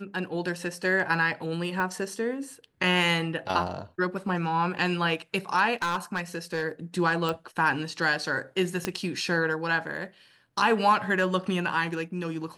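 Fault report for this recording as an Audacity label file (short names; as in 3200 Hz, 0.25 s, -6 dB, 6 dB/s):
1.800000	1.800000	pop -18 dBFS
5.820000	6.640000	clipped -23 dBFS
7.290000	7.290000	pop
8.850000	8.850000	pop -12 dBFS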